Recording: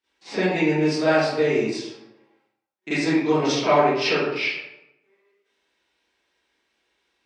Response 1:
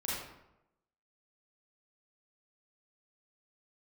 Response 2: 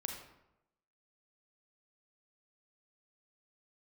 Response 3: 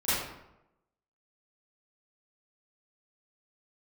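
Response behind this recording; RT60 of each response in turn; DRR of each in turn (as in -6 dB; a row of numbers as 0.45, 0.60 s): 3; 0.90, 0.90, 0.90 s; -7.5, 2.5, -16.5 dB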